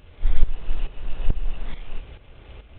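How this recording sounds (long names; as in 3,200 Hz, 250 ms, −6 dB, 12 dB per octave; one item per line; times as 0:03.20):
a buzz of ramps at a fixed pitch in blocks of 8 samples
tremolo saw up 2.3 Hz, depth 70%
G.726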